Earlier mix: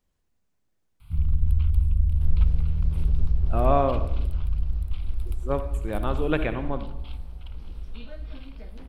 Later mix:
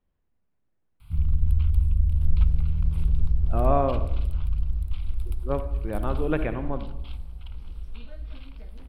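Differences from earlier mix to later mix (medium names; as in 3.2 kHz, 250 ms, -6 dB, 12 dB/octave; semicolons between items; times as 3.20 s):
speech: add distance through air 400 m; second sound -5.0 dB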